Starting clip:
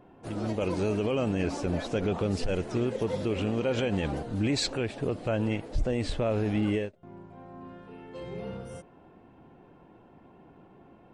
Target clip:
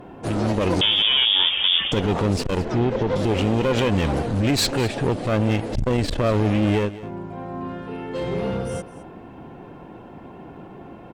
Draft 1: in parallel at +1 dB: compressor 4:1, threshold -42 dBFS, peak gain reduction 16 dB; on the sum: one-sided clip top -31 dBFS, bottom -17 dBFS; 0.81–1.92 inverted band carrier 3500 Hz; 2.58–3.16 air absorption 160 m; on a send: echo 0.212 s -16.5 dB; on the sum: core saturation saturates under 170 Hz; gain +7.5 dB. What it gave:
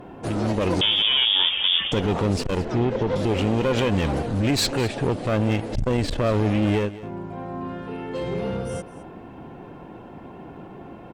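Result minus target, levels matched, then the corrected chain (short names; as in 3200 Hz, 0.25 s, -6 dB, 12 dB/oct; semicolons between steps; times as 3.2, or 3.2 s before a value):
compressor: peak gain reduction +7.5 dB
in parallel at +1 dB: compressor 4:1, threshold -32 dBFS, peak gain reduction 8.5 dB; on the sum: one-sided clip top -31 dBFS, bottom -17 dBFS; 0.81–1.92 inverted band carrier 3500 Hz; 2.58–3.16 air absorption 160 m; on a send: echo 0.212 s -16.5 dB; on the sum: core saturation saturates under 170 Hz; gain +7.5 dB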